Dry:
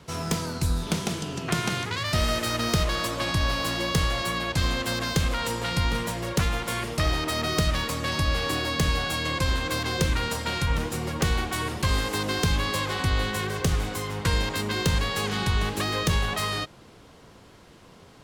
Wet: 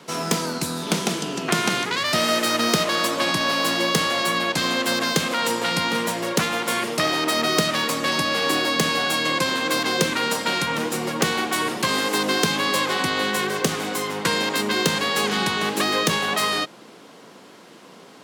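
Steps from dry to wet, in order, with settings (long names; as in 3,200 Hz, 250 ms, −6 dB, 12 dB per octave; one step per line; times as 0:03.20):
high-pass filter 190 Hz 24 dB per octave
level +6.5 dB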